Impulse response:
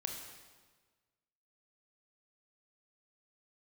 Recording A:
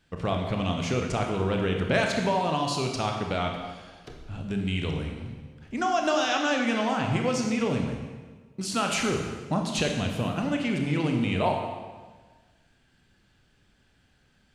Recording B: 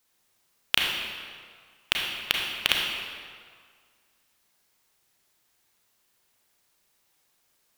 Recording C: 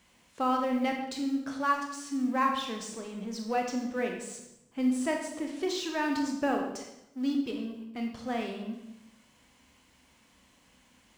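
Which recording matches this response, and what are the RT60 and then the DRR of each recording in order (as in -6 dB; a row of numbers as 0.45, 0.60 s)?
A; 1.4, 1.9, 0.85 s; 2.0, -1.5, 2.0 dB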